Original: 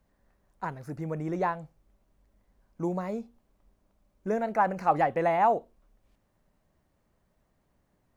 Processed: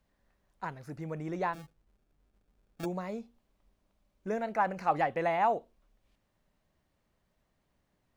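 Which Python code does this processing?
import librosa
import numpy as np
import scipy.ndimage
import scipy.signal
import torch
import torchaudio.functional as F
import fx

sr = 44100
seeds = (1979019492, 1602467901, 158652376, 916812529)

y = fx.peak_eq(x, sr, hz=3300.0, db=6.5, octaves=1.8)
y = fx.sample_hold(y, sr, seeds[0], rate_hz=1000.0, jitter_pct=0, at=(1.53, 2.84), fade=0.02)
y = y * 10.0 ** (-5.0 / 20.0)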